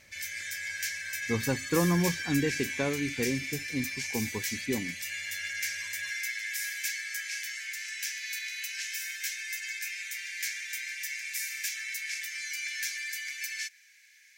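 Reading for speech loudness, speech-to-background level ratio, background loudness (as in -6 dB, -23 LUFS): -32.0 LUFS, 2.0 dB, -34.0 LUFS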